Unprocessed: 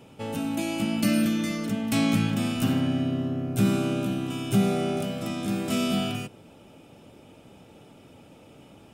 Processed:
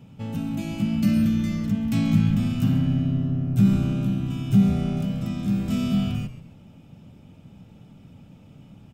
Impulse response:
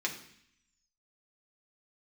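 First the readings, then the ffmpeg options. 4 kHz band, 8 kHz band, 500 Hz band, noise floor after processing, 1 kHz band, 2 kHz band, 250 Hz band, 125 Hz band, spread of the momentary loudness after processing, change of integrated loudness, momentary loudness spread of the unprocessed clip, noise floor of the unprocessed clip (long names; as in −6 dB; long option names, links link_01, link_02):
−6.0 dB, can't be measured, −8.0 dB, −50 dBFS, −7.0 dB, −6.0 dB, +3.0 dB, +7.0 dB, 9 LU, +3.0 dB, 7 LU, −52 dBFS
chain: -filter_complex "[0:a]equalizer=frequency=9600:width_type=o:width=0.24:gain=-11.5,asplit=4[link_01][link_02][link_03][link_04];[link_02]adelay=134,afreqshift=-120,volume=-15dB[link_05];[link_03]adelay=268,afreqshift=-240,volume=-25.5dB[link_06];[link_04]adelay=402,afreqshift=-360,volume=-35.9dB[link_07];[link_01][link_05][link_06][link_07]amix=inputs=4:normalize=0,asplit=2[link_08][link_09];[link_09]asoftclip=type=tanh:threshold=-24.5dB,volume=-8.5dB[link_10];[link_08][link_10]amix=inputs=2:normalize=0,lowshelf=frequency=260:width_type=q:width=1.5:gain=11,volume=-8dB"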